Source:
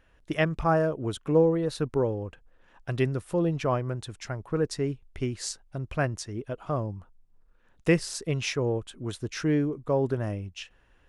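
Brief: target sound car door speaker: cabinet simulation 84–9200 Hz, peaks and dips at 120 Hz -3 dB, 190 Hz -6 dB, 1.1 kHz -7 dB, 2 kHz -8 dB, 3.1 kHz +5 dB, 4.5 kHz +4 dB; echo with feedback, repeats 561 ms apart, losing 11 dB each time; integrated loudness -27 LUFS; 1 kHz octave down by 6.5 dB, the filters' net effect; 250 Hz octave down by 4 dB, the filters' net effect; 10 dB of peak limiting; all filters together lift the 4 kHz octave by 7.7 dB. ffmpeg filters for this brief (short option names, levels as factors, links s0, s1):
-af "equalizer=f=250:t=o:g=-4,equalizer=f=1000:t=o:g=-6,equalizer=f=4000:t=o:g=6.5,alimiter=limit=0.0841:level=0:latency=1,highpass=84,equalizer=f=120:t=q:w=4:g=-3,equalizer=f=190:t=q:w=4:g=-6,equalizer=f=1100:t=q:w=4:g=-7,equalizer=f=2000:t=q:w=4:g=-8,equalizer=f=3100:t=q:w=4:g=5,equalizer=f=4500:t=q:w=4:g=4,lowpass=f=9200:w=0.5412,lowpass=f=9200:w=1.3066,aecho=1:1:561|1122|1683:0.282|0.0789|0.0221,volume=2"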